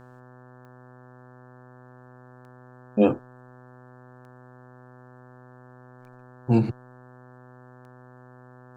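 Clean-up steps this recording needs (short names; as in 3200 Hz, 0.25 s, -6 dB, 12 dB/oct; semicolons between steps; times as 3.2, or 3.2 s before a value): de-click; de-hum 125.6 Hz, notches 14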